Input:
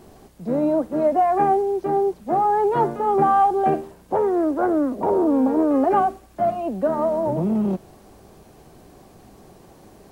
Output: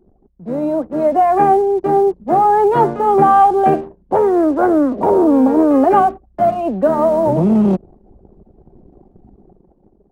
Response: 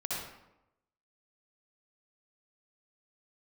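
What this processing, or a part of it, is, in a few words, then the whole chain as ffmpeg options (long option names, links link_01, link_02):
voice memo with heavy noise removal: -af "anlmdn=0.398,dynaudnorm=framelen=440:gausssize=5:maxgain=12dB"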